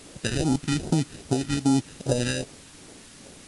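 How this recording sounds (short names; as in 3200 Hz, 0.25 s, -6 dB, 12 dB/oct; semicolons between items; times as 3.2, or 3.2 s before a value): aliases and images of a low sample rate 1100 Hz, jitter 0%; phasing stages 2, 2.5 Hz, lowest notch 630–2000 Hz; a quantiser's noise floor 8-bit, dither triangular; MP3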